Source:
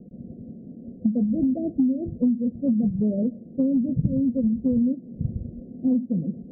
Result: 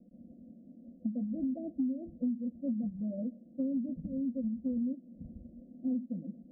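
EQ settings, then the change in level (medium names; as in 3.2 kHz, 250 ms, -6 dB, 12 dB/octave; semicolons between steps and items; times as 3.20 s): distance through air 280 m; bass shelf 190 Hz -6 dB; static phaser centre 620 Hz, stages 8; -8.5 dB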